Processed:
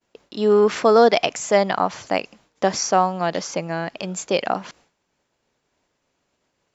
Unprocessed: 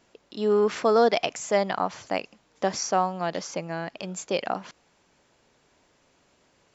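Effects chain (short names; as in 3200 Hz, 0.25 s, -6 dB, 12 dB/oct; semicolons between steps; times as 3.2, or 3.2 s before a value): expander -54 dBFS; gain +6 dB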